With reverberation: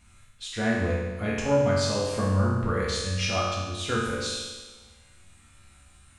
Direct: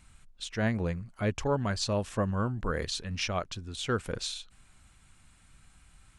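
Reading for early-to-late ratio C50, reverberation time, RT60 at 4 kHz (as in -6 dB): -0.5 dB, 1.3 s, 1.3 s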